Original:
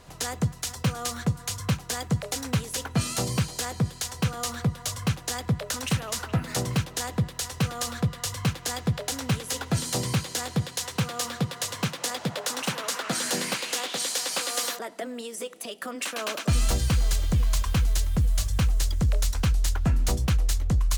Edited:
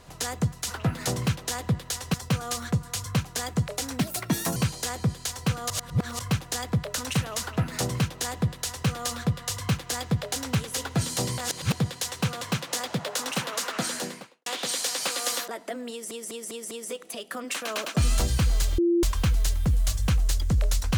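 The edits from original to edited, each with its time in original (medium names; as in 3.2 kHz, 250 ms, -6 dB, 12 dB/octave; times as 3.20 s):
2.54–3.32 s: speed 139%
4.46–4.95 s: reverse
6.17–7.63 s: copy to 0.68 s
10.14–10.48 s: reverse
11.17–11.72 s: delete
13.08–13.77 s: studio fade out
15.22 s: stutter 0.20 s, 5 plays
17.29–17.54 s: bleep 343 Hz -18.5 dBFS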